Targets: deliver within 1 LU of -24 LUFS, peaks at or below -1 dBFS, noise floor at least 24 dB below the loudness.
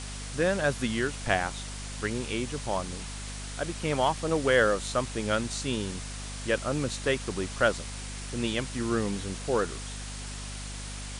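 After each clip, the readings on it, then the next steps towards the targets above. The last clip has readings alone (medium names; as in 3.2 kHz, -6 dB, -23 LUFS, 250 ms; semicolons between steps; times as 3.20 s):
hum 50 Hz; highest harmonic 250 Hz; hum level -37 dBFS; noise floor -38 dBFS; noise floor target -54 dBFS; loudness -30.0 LUFS; peak level -9.5 dBFS; loudness target -24.0 LUFS
-> hum notches 50/100/150/200/250 Hz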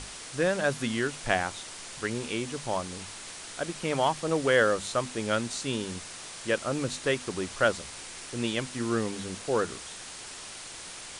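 hum not found; noise floor -43 dBFS; noise floor target -55 dBFS
-> noise reduction 12 dB, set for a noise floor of -43 dBFS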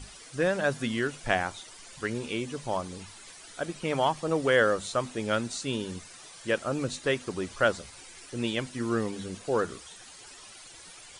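noise floor -49 dBFS; noise floor target -54 dBFS
-> noise reduction 6 dB, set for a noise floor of -49 dBFS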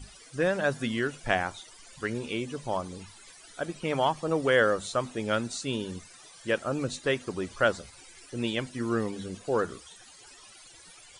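noise floor -52 dBFS; noise floor target -54 dBFS
-> noise reduction 6 dB, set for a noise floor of -52 dBFS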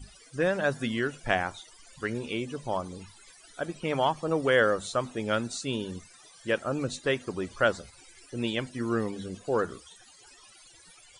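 noise floor -55 dBFS; loudness -29.5 LUFS; peak level -9.5 dBFS; loudness target -24.0 LUFS
-> trim +5.5 dB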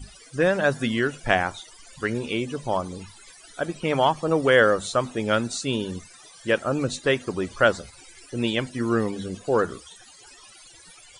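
loudness -24.0 LUFS; peak level -4.0 dBFS; noise floor -49 dBFS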